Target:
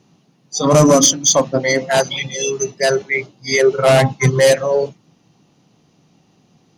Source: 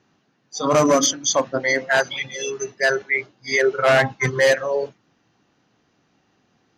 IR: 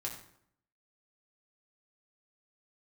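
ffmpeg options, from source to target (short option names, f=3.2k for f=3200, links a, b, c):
-af "equalizer=f=160:t=o:w=0.67:g=9,equalizer=f=1.6k:t=o:w=0.67:g=-11,equalizer=f=10k:t=o:w=0.67:g=12,acontrast=66"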